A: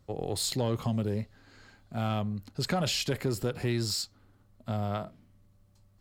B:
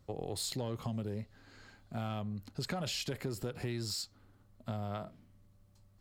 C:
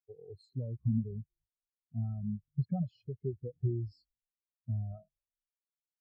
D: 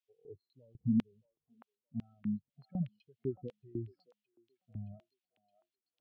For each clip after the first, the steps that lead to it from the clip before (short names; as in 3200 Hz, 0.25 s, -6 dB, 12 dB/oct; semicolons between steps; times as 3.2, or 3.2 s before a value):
compressor 2.5:1, threshold -35 dBFS, peak gain reduction 7.5 dB; gain -1.5 dB
frequency-shifting echo 0.229 s, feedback 50%, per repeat -64 Hz, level -14.5 dB; spectral expander 4:1
LFO band-pass square 2 Hz 270–3000 Hz; delay with a stepping band-pass 0.621 s, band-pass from 1000 Hz, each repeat 0.7 oct, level -6.5 dB; gain +7 dB